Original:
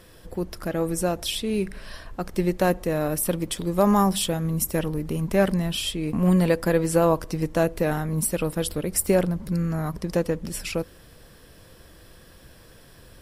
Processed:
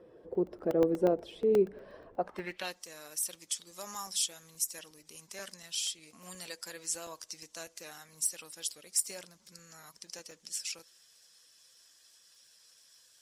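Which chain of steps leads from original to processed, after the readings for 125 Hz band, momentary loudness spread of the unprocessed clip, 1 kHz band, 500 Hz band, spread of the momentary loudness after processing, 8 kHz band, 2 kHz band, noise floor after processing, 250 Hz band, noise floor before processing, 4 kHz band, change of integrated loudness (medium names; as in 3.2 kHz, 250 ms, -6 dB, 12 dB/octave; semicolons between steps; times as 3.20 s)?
-24.0 dB, 10 LU, -15.5 dB, -9.5 dB, 19 LU, -4.0 dB, -13.5 dB, -64 dBFS, -15.0 dB, -50 dBFS, -7.5 dB, -10.0 dB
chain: coarse spectral quantiser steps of 15 dB; band-pass sweep 430 Hz -> 6.3 kHz, 2.10–2.80 s; crackling interface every 0.12 s, samples 64, zero, from 0.35 s; trim +3.5 dB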